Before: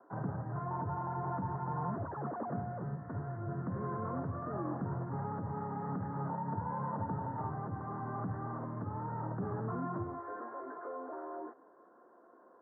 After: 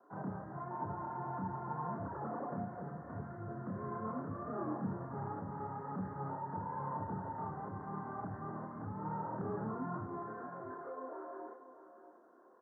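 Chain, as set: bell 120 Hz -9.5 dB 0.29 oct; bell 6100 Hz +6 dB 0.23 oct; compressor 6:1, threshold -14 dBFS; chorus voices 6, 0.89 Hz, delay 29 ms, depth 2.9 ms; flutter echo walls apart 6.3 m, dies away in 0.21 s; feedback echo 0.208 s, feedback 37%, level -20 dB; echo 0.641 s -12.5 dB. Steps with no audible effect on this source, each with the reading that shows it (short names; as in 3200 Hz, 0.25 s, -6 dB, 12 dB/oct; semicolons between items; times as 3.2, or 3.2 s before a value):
bell 6100 Hz: input band ends at 1700 Hz; compressor, threshold -14 dBFS: input peak -25.5 dBFS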